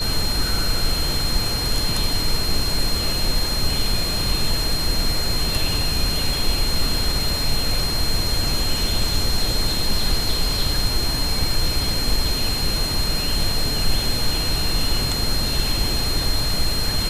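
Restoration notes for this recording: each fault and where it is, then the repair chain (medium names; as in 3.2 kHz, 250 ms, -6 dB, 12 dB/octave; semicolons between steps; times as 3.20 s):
whine 4.2 kHz -24 dBFS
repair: band-stop 4.2 kHz, Q 30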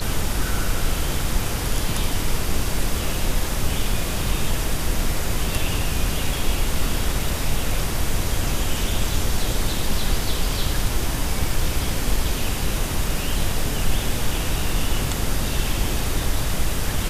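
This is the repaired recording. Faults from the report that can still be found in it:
nothing left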